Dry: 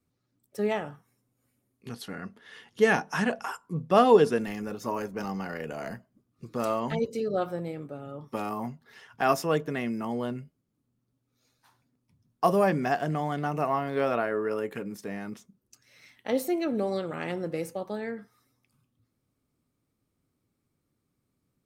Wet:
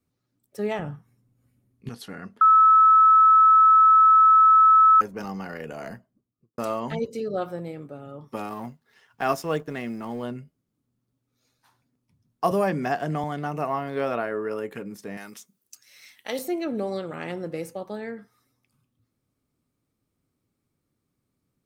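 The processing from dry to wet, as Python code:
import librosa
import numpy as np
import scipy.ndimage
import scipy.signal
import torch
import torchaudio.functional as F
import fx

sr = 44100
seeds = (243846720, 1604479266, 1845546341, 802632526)

y = fx.bass_treble(x, sr, bass_db=12, treble_db=-4, at=(0.79, 1.89))
y = fx.studio_fade_out(y, sr, start_s=5.83, length_s=0.75)
y = fx.law_mismatch(y, sr, coded='A', at=(8.46, 10.23))
y = fx.band_squash(y, sr, depth_pct=40, at=(12.51, 13.24))
y = fx.tilt_eq(y, sr, slope=3.5, at=(15.17, 16.39))
y = fx.edit(y, sr, fx.bleep(start_s=2.41, length_s=2.6, hz=1300.0, db=-11.5), tone=tone)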